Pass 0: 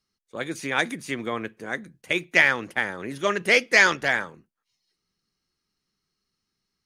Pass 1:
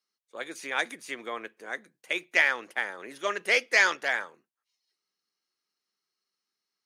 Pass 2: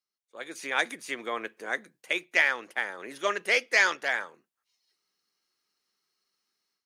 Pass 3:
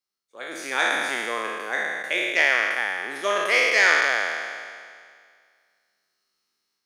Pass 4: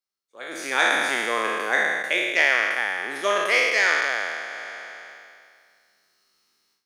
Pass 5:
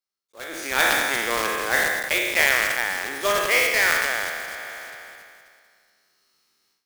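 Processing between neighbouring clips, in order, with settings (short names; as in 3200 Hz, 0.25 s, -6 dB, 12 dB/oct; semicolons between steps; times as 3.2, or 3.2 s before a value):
HPF 440 Hz 12 dB/oct; gain -4.5 dB
AGC gain up to 13 dB; gain -7.5 dB
spectral trails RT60 2.04 s
AGC gain up to 12.5 dB; gain -4 dB
block floating point 3-bit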